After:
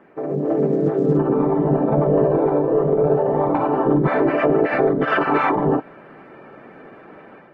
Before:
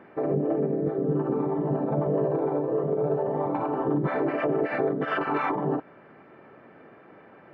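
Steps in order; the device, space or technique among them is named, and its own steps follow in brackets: video call (high-pass 110 Hz 24 dB/octave; level rider gain up to 8.5 dB; Opus 16 kbps 48 kHz)

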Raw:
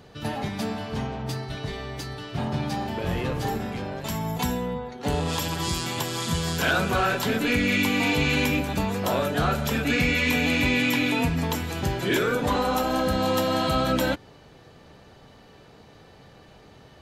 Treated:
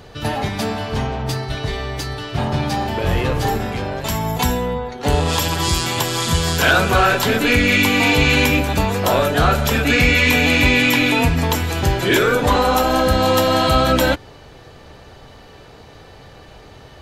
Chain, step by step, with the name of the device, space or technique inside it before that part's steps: low shelf boost with a cut just above (bass shelf 86 Hz +6 dB; peaking EQ 190 Hz -6 dB 1.2 oct); trim +9 dB

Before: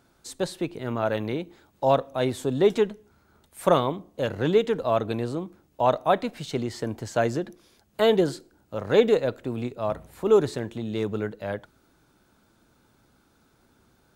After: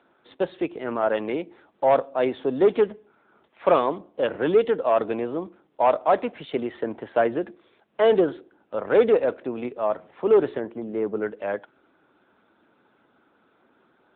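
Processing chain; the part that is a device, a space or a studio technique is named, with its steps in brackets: 10.60–11.22 s: low-pass 1.4 kHz 12 dB/octave; telephone (band-pass 310–3300 Hz; saturation -14 dBFS, distortion -16 dB; trim +5 dB; AMR-NB 10.2 kbps 8 kHz)

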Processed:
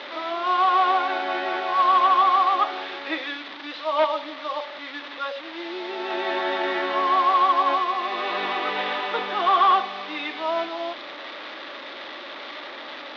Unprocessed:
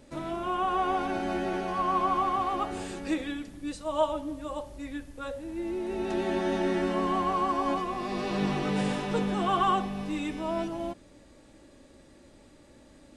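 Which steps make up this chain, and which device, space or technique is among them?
digital answering machine (band-pass 350–3200 Hz; one-bit delta coder 32 kbps, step -38 dBFS; cabinet simulation 460–4100 Hz, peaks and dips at 480 Hz -5 dB, 1.2 kHz +4 dB, 2 kHz +4 dB, 3.6 kHz +8 dB); trim +8 dB

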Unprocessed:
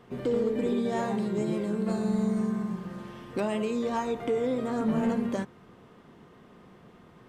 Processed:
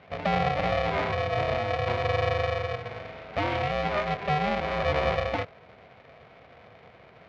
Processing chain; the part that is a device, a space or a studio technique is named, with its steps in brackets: ring modulator pedal into a guitar cabinet (polarity switched at an audio rate 300 Hz; cabinet simulation 76–4200 Hz, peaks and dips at 250 Hz +3 dB, 660 Hz +6 dB, 2.2 kHz +8 dB)

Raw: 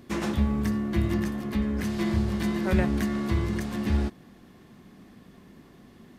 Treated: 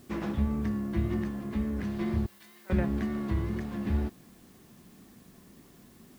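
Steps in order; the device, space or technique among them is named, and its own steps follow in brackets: cassette deck with a dirty head (tape spacing loss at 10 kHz 20 dB; wow and flutter; white noise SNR 31 dB); 2.26–2.70 s: differentiator; trim -3.5 dB

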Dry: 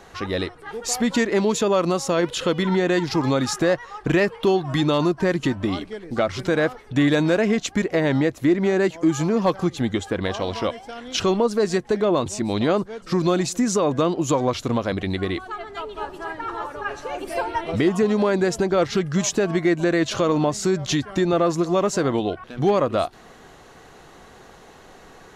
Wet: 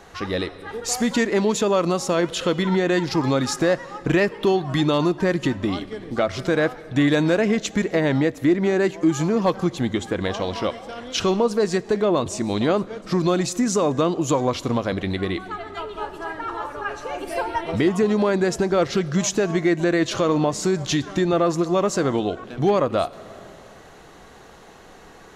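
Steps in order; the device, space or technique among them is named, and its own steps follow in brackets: compressed reverb return (on a send at -9 dB: reverberation RT60 1.8 s, pre-delay 5 ms + compression 10:1, threshold -27 dBFS, peak gain reduction 13.5 dB)

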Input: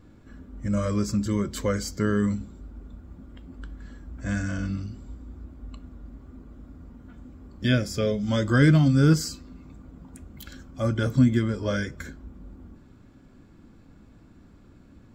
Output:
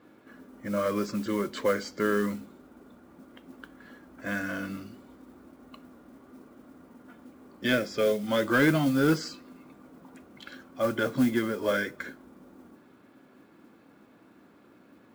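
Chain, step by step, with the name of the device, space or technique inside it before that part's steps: carbon microphone (band-pass 340–3300 Hz; saturation -17.5 dBFS, distortion -20 dB; modulation noise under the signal 22 dB); trim +3.5 dB

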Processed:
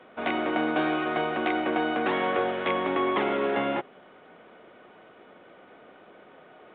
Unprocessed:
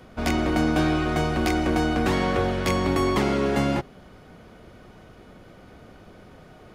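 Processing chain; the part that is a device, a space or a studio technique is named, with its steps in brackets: telephone (band-pass 370–3500 Hz; µ-law 64 kbps 8 kHz)

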